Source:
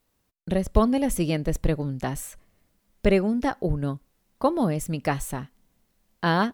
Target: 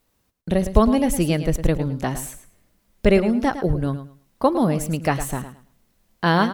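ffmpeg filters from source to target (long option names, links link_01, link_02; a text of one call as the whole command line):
ffmpeg -i in.wav -af "aecho=1:1:108|216|324:0.266|0.0559|0.0117,volume=4dB" out.wav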